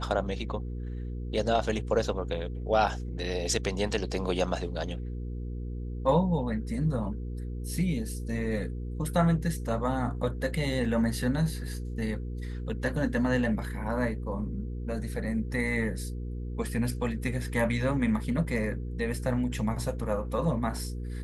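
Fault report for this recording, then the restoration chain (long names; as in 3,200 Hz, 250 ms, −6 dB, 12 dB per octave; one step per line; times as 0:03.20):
mains hum 60 Hz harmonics 8 −35 dBFS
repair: hum removal 60 Hz, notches 8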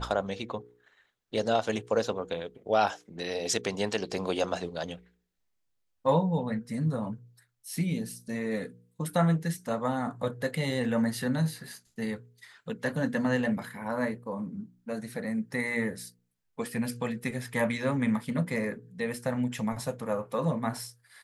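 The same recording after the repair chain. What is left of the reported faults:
none of them is left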